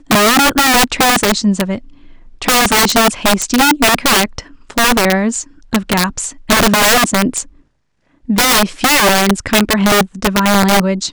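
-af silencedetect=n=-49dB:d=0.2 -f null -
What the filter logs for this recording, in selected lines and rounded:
silence_start: 7.64
silence_end: 8.07 | silence_duration: 0.43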